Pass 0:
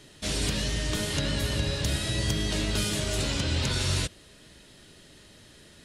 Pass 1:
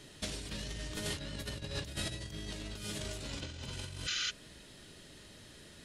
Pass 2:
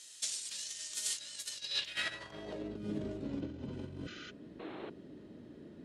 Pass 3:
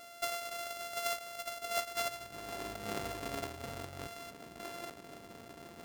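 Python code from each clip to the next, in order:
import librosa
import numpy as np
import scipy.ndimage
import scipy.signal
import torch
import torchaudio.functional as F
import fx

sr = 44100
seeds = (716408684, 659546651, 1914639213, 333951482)

y1 = fx.spec_repair(x, sr, seeds[0], start_s=3.46, length_s=0.82, low_hz=1200.0, high_hz=7300.0, source='before')
y1 = fx.over_compress(y1, sr, threshold_db=-32.0, ratio=-0.5)
y1 = y1 * librosa.db_to_amplitude(-7.0)
y2 = fx.spec_paint(y1, sr, seeds[1], shape='noise', start_s=4.59, length_s=0.31, low_hz=290.0, high_hz=4300.0, level_db=-42.0)
y2 = fx.filter_sweep_bandpass(y2, sr, from_hz=7400.0, to_hz=280.0, start_s=1.49, end_s=2.79, q=1.8)
y2 = y2 * librosa.db_to_amplitude(10.5)
y3 = np.r_[np.sort(y2[:len(y2) // 64 * 64].reshape(-1, 64), axis=1).ravel(), y2[len(y2) // 64 * 64:]]
y3 = fx.dynamic_eq(y3, sr, hz=200.0, q=0.82, threshold_db=-55.0, ratio=4.0, max_db=-7)
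y3 = y3 * librosa.db_to_amplitude(1.5)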